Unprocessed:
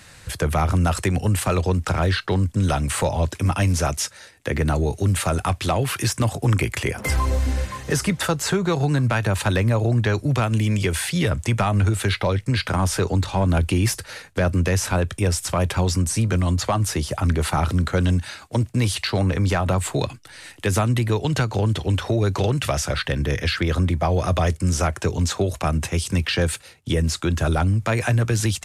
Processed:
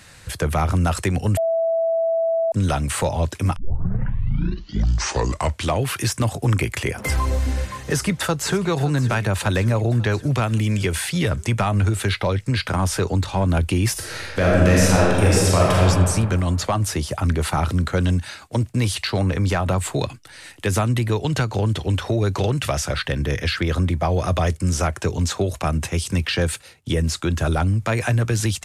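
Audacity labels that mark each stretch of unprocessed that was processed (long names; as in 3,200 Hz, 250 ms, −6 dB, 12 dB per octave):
1.370000	2.520000	beep over 659 Hz −17 dBFS
3.560000	3.560000	tape start 2.29 s
7.830000	8.610000	delay throw 570 ms, feedback 65%, level −15 dB
13.920000	15.810000	thrown reverb, RT60 1.9 s, DRR −5.5 dB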